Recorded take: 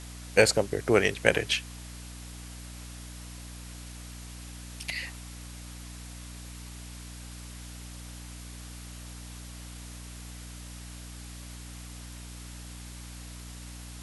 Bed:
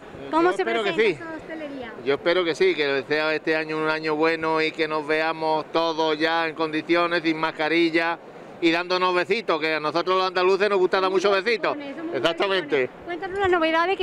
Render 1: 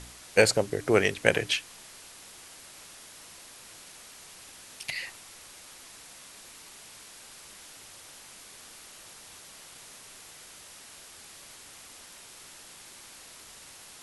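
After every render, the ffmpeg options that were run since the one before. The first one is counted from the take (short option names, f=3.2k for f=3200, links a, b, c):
-af "bandreject=f=60:t=h:w=4,bandreject=f=120:t=h:w=4,bandreject=f=180:t=h:w=4,bandreject=f=240:t=h:w=4,bandreject=f=300:t=h:w=4"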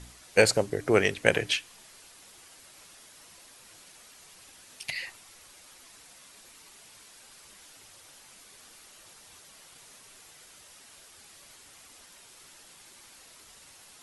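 -af "afftdn=nr=6:nf=-50"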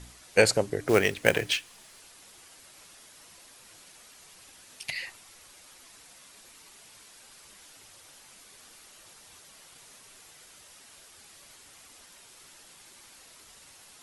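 -filter_complex "[0:a]asettb=1/sr,asplit=3[a][b][c];[a]atrim=end=0.884[d];[b]atrim=start=0.88:end=2.01,asetpts=PTS-STARTPTS,afade=t=in:d=0.004:c=qsin,afade=t=out:st=1.126:d=0.004:c=qsin,acrusher=bits=4:mode=log:mix=0:aa=0.000001[e];[c]atrim=start=2.006[f];[d][e]acrossfade=d=0.004:c1=hsin:c2=qsin[g];[g][f]acrossfade=d=0.004:c1=qsin:c2=hsin"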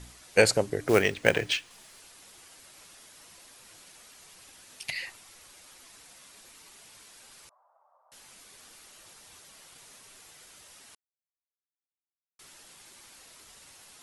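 -filter_complex "[0:a]asettb=1/sr,asplit=3[a][b][c];[a]atrim=end=1.024[d];[b]atrim=start=1.02:end=1.71,asetpts=PTS-STARTPTS,afade=t=in:d=0.004:c=qsin,afade=t=out:st=0.686:d=0.004:c=qsin,equalizer=f=13k:w=0.86:g=-11[e];[c]atrim=start=1.706[f];[d][e]acrossfade=d=0.004:c1=hsin:c2=qsin[g];[g][f]acrossfade=d=0.004:c1=qsin:c2=hsin,asettb=1/sr,asplit=3[h][i][j];[h]atrim=end=7.494[k];[i]atrim=start=7.49:end=8.12,asetpts=PTS-STARTPTS,afade=t=in:d=0.004:c=qsin,afade=t=out:st=0.626:d=0.004:c=qsin,asuperpass=centerf=830:order=8:qfactor=1.4[l];[j]atrim=start=8.116[m];[k][l]acrossfade=d=0.004:c1=hsin:c2=qsin[n];[n][m]acrossfade=d=0.004:c1=qsin:c2=hsin,asplit=3[o][p][q];[o]atrim=end=10.95,asetpts=PTS-STARTPTS,afade=t=out:st=10.946:d=0.004:c=hsin[r];[p]atrim=start=10.95:end=12.39,asetpts=PTS-STARTPTS,volume=0[s];[q]atrim=start=12.39,asetpts=PTS-STARTPTS,afade=t=in:d=0.004:c=hsin[t];[r][s][t]concat=n=3:v=0:a=1"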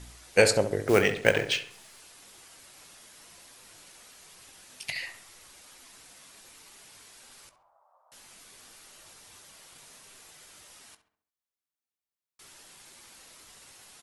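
-filter_complex "[0:a]asplit=2[a][b];[b]adelay=20,volume=-13dB[c];[a][c]amix=inputs=2:normalize=0,asplit=2[d][e];[e]adelay=68,lowpass=f=2.3k:p=1,volume=-10dB,asplit=2[f][g];[g]adelay=68,lowpass=f=2.3k:p=1,volume=0.49,asplit=2[h][i];[i]adelay=68,lowpass=f=2.3k:p=1,volume=0.49,asplit=2[j][k];[k]adelay=68,lowpass=f=2.3k:p=1,volume=0.49,asplit=2[l][m];[m]adelay=68,lowpass=f=2.3k:p=1,volume=0.49[n];[d][f][h][j][l][n]amix=inputs=6:normalize=0"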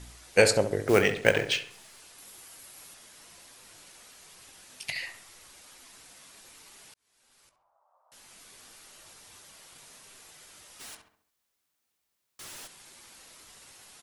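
-filter_complex "[0:a]asettb=1/sr,asplit=3[a][b][c];[a]atrim=end=2.184[d];[b]atrim=start=2.18:end=2.94,asetpts=PTS-STARTPTS,afade=t=in:d=0.004:c=qsin,afade=t=out:st=0.756:d=0.004:c=qsin,equalizer=f=13k:t=o:w=0.64:g=10.5[e];[c]atrim=start=2.936[f];[d][e]acrossfade=d=0.004:c1=hsin:c2=qsin[g];[g][f]acrossfade=d=0.004:c1=qsin:c2=hsin,asplit=3[h][i][j];[h]afade=t=out:st=10.79:d=0.02[k];[i]aeval=exprs='0.00891*sin(PI/2*2.82*val(0)/0.00891)':c=same,afade=t=in:st=10.79:d=0.02,afade=t=out:st=12.66:d=0.02[l];[j]afade=t=in:st=12.66:d=0.02[m];[k][l][m]amix=inputs=3:normalize=0,asplit=2[n][o];[n]atrim=end=6.94,asetpts=PTS-STARTPTS,afade=t=out:st=6.936:d=0.004:c=hsin[p];[o]atrim=start=6.94,asetpts=PTS-STARTPTS,afade=t=in:d=1.51[q];[p][q]concat=n=2:v=0:a=1"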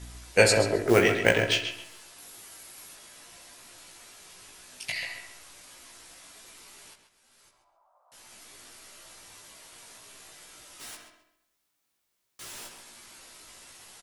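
-filter_complex "[0:a]asplit=2[a][b];[b]adelay=17,volume=-3dB[c];[a][c]amix=inputs=2:normalize=0,asplit=2[d][e];[e]adelay=133,lowpass=f=4k:p=1,volume=-7dB,asplit=2[f][g];[g]adelay=133,lowpass=f=4k:p=1,volume=0.31,asplit=2[h][i];[i]adelay=133,lowpass=f=4k:p=1,volume=0.31,asplit=2[j][k];[k]adelay=133,lowpass=f=4k:p=1,volume=0.31[l];[d][f][h][j][l]amix=inputs=5:normalize=0"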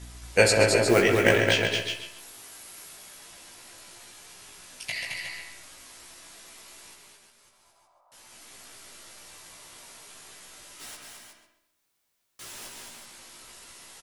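-af "aecho=1:1:219|364:0.631|0.398"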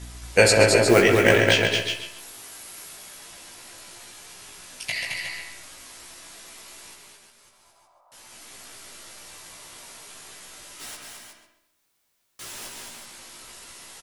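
-af "volume=4dB,alimiter=limit=-1dB:level=0:latency=1"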